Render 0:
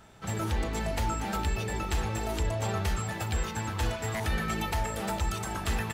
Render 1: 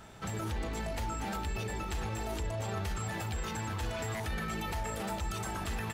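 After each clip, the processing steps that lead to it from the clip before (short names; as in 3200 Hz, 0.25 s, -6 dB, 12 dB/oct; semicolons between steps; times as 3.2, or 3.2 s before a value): limiter -31 dBFS, peak gain reduction 11 dB; gain +3 dB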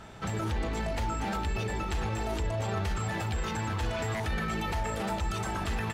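high shelf 8900 Hz -11.5 dB; gain +4.5 dB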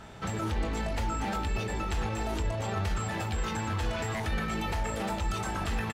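doubler 22 ms -11 dB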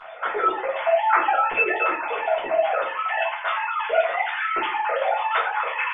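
sine-wave speech; shoebox room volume 250 m³, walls furnished, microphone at 5.1 m; gain -2 dB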